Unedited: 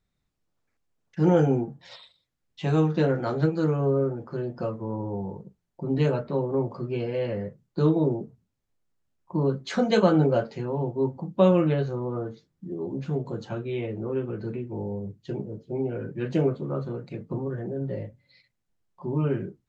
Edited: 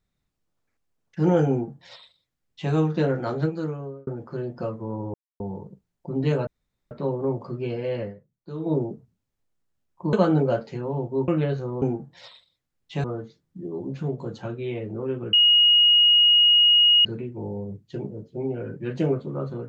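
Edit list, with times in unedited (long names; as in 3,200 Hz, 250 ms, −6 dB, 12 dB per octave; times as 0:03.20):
0:01.50–0:02.72: duplicate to 0:12.11
0:03.33–0:04.07: fade out
0:05.14: splice in silence 0.26 s
0:06.21: splice in room tone 0.44 s
0:07.32–0:08.02: duck −13 dB, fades 0.13 s
0:09.43–0:09.97: remove
0:11.12–0:11.57: remove
0:14.40: insert tone 2,880 Hz −13 dBFS 1.72 s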